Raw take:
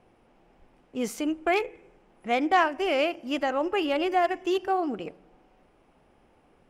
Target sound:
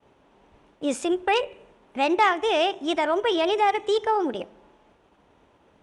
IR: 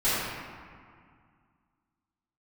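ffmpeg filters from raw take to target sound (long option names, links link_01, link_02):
-filter_complex "[0:a]agate=range=-33dB:threshold=-58dB:ratio=3:detection=peak,highpass=42,asplit=2[link_01][link_02];[link_02]alimiter=limit=-21.5dB:level=0:latency=1,volume=-3dB[link_03];[link_01][link_03]amix=inputs=2:normalize=0,asetrate=50715,aresample=44100,aresample=22050,aresample=44100"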